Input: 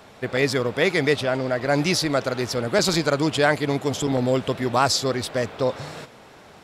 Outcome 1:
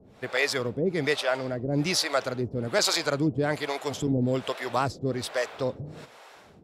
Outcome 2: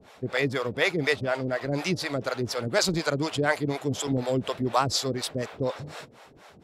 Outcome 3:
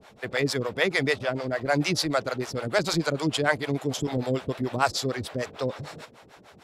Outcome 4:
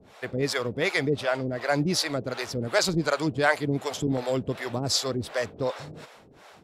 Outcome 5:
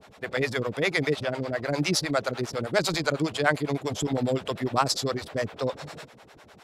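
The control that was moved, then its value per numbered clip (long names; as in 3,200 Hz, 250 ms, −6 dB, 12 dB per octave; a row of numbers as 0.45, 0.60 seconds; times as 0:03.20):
two-band tremolo in antiphase, speed: 1.2, 4.1, 6.7, 2.7, 9.9 Hertz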